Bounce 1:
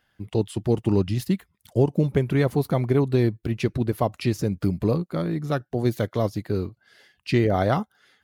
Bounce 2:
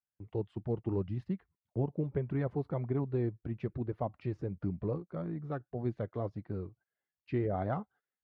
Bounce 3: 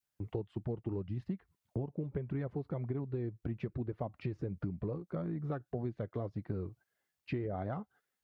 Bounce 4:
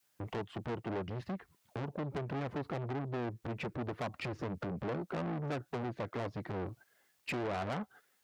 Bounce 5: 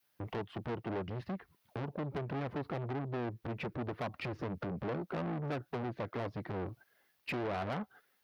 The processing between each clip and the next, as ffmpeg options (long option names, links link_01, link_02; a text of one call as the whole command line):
ffmpeg -i in.wav -af "agate=range=-21dB:threshold=-46dB:ratio=16:detection=peak,lowpass=1500,flanger=delay=0.8:depth=2:regen=-56:speed=1.7:shape=triangular,volume=-8dB" out.wav
ffmpeg -i in.wav -af "adynamicequalizer=threshold=0.00316:dfrequency=890:dqfactor=1.1:tfrequency=890:tqfactor=1.1:attack=5:release=100:ratio=0.375:range=2:mode=cutabove:tftype=bell,acompressor=threshold=-41dB:ratio=10,volume=7.5dB" out.wav
ffmpeg -i in.wav -af "aeval=exprs='(tanh(200*val(0)+0.3)-tanh(0.3))/200':channel_layout=same,highpass=frequency=220:poles=1,volume=14dB" out.wav
ffmpeg -i in.wav -af "equalizer=frequency=7500:width_type=o:width=0.63:gain=-10.5" out.wav